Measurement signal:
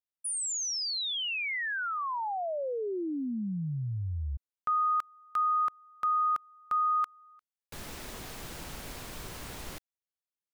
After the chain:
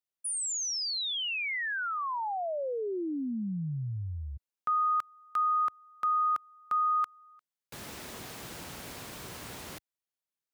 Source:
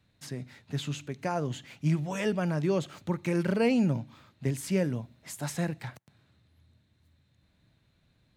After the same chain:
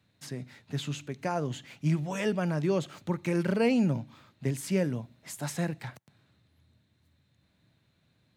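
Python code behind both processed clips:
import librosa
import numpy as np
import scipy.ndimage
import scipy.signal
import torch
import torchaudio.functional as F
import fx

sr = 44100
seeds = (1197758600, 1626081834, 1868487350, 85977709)

y = scipy.signal.sosfilt(scipy.signal.butter(2, 88.0, 'highpass', fs=sr, output='sos'), x)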